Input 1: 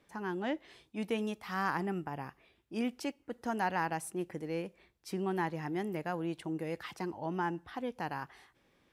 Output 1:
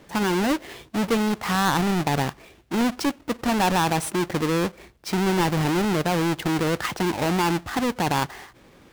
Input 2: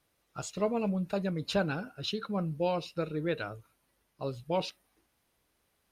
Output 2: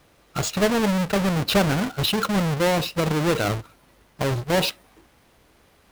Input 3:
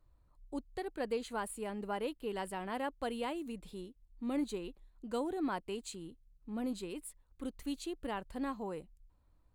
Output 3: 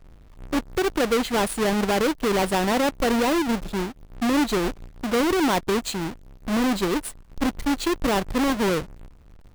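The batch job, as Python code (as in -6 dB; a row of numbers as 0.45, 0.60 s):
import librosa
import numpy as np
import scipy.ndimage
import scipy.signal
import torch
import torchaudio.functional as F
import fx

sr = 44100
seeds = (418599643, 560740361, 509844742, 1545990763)

p1 = fx.halfwave_hold(x, sr)
p2 = fx.high_shelf(p1, sr, hz=6700.0, db=-5.0)
p3 = fx.over_compress(p2, sr, threshold_db=-35.0, ratio=-0.5)
p4 = p2 + (p3 * librosa.db_to_amplitude(-2.5))
y = p4 * 10.0 ** (-24 / 20.0) / np.sqrt(np.mean(np.square(p4)))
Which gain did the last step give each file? +6.5, +5.5, +8.5 dB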